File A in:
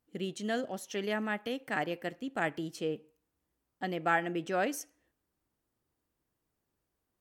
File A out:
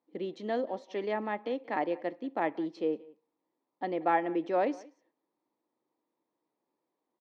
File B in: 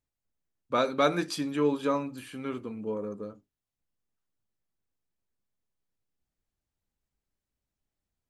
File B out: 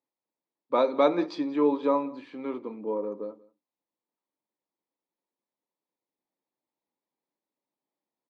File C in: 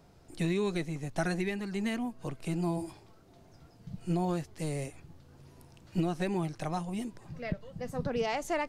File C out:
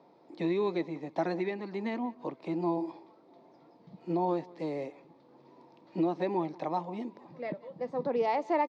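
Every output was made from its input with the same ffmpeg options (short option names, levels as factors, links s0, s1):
-af "highpass=f=200:w=0.5412,highpass=f=200:w=1.3066,equalizer=f=200:t=q:w=4:g=-3,equalizer=f=320:t=q:w=4:g=5,equalizer=f=530:t=q:w=4:g=5,equalizer=f=930:t=q:w=4:g=9,equalizer=f=1500:t=q:w=4:g=-10,equalizer=f=2900:t=q:w=4:g=-10,lowpass=f=4000:w=0.5412,lowpass=f=4000:w=1.3066,aecho=1:1:182:0.075"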